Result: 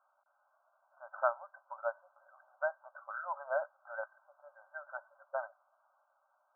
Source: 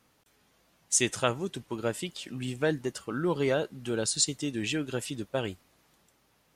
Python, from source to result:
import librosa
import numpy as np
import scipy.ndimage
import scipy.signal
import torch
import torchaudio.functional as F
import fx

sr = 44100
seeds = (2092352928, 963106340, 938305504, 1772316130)

y = fx.brickwall_bandpass(x, sr, low_hz=550.0, high_hz=1600.0)
y = y * librosa.db_to_amplitude(-1.0)